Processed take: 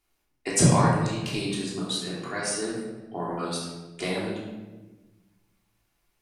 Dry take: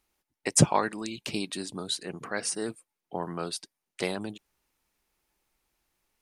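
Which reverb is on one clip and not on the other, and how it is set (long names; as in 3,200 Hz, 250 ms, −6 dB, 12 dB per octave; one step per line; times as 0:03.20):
rectangular room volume 720 cubic metres, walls mixed, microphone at 3.2 metres
level −4 dB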